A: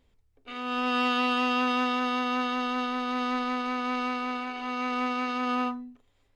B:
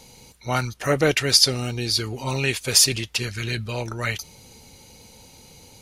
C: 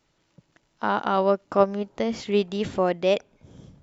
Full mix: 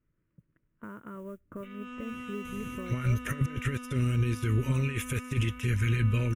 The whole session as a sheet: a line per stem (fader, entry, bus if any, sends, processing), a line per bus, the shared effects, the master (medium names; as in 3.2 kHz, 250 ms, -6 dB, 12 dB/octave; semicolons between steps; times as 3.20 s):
-16.0 dB, 1.15 s, no bus, no send, Chebyshev shaper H 5 -15 dB, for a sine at -17 dBFS
-3.5 dB, 2.45 s, bus A, no send, none
-13.5 dB, 0.00 s, bus A, no send, low-pass 1.5 kHz 12 dB/octave; compression 2.5:1, threshold -29 dBFS, peak gain reduction 11 dB; modulation noise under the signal 28 dB
bus A: 0.0 dB, compressor with a negative ratio -30 dBFS, ratio -0.5; peak limiter -21 dBFS, peak gain reduction 7 dB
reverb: none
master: bass shelf 190 Hz +10 dB; static phaser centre 1.9 kHz, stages 4